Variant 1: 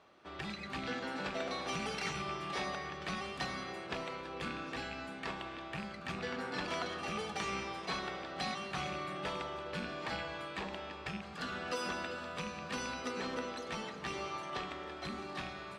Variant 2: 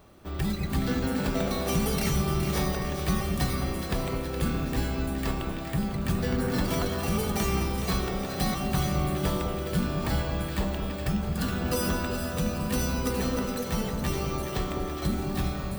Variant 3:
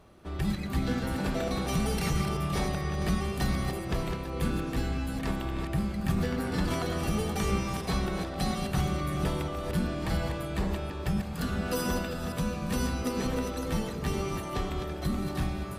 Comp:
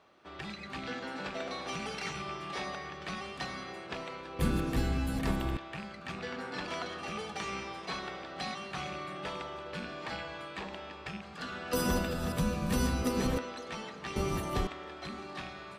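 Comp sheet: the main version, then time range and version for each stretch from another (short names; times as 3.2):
1
4.39–5.57 from 3
11.73–13.38 from 3
14.16–14.67 from 3
not used: 2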